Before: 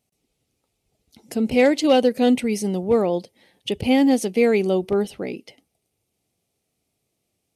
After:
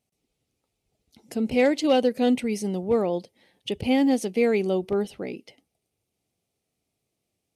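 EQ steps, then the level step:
high-shelf EQ 9,000 Hz −4 dB
−4.0 dB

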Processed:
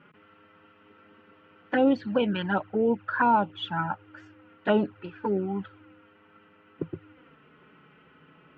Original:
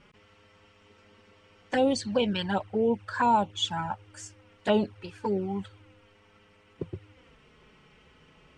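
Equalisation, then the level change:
loudspeaker in its box 130–2,900 Hz, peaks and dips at 160 Hz +5 dB, 300 Hz +8 dB, 1,400 Hz +9 dB
notch filter 2,200 Hz, Q 17
0.0 dB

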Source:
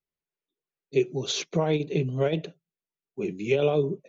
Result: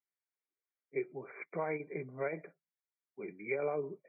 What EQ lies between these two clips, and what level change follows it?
high-pass filter 340 Hz 6 dB per octave
linear-phase brick-wall low-pass 2,400 Hz
tilt shelving filter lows −6.5 dB, about 940 Hz
−6.0 dB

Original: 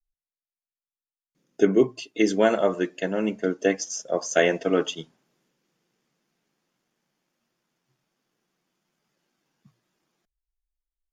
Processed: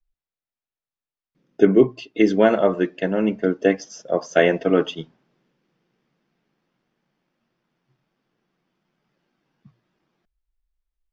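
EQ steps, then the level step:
high-frequency loss of the air 180 metres
low-shelf EQ 170 Hz +5 dB
notch filter 6,700 Hz, Q 15
+4.0 dB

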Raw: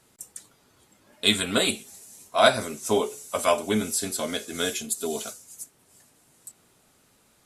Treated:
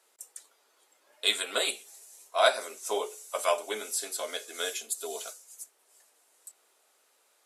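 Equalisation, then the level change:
high-pass filter 430 Hz 24 dB per octave
−4.5 dB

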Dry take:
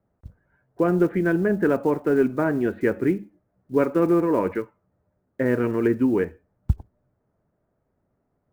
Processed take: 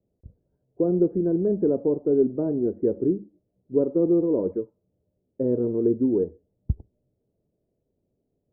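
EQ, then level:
transistor ladder low-pass 580 Hz, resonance 35%
+3.5 dB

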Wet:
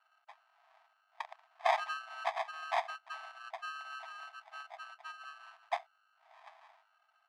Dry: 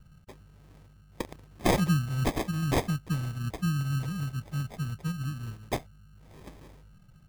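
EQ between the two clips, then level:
linear-phase brick-wall high-pass 630 Hz
head-to-tape spacing loss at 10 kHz 27 dB
parametric band 7,000 Hz −3 dB 0.68 octaves
+3.5 dB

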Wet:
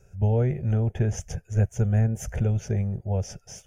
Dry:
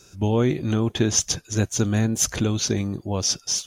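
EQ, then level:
tilt shelving filter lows +7.5 dB, about 1,400 Hz
low-shelf EQ 89 Hz +8 dB
phaser with its sweep stopped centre 1,100 Hz, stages 6
−6.5 dB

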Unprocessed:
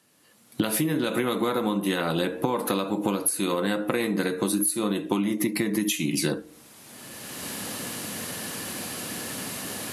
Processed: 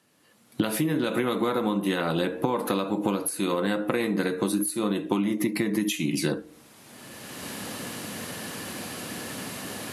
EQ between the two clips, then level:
high-shelf EQ 4,800 Hz −6 dB
0.0 dB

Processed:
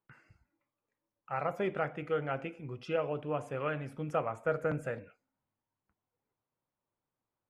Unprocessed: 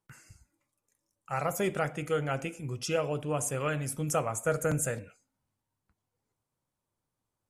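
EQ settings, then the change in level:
high-frequency loss of the air 390 metres
low-shelf EQ 170 Hz −11 dB
0.0 dB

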